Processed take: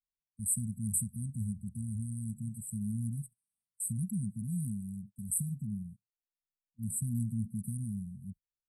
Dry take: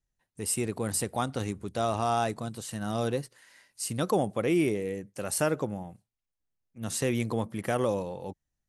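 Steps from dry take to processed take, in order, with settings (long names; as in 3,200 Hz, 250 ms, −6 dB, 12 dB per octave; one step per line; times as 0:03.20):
noise gate −44 dBFS, range −23 dB
linear-phase brick-wall band-stop 240–7,700 Hz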